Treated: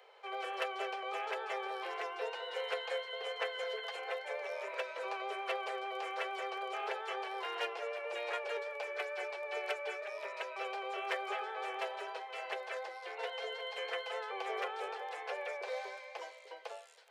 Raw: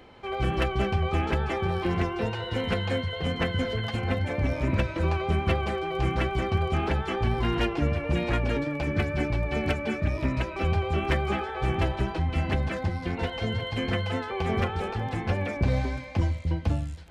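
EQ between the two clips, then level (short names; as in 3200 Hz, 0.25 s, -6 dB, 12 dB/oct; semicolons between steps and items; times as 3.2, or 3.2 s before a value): steep high-pass 410 Hz 96 dB/oct; -7.0 dB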